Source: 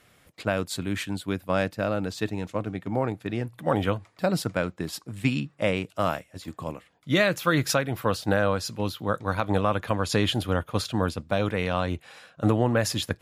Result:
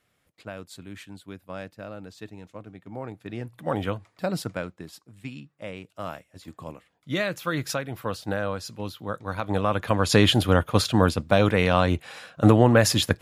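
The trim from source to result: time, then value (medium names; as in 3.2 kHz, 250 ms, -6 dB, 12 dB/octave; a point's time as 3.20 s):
2.81 s -12 dB
3.53 s -3 dB
4.48 s -3 dB
5.08 s -13 dB
5.60 s -13 dB
6.49 s -5 dB
9.24 s -5 dB
10.18 s +6 dB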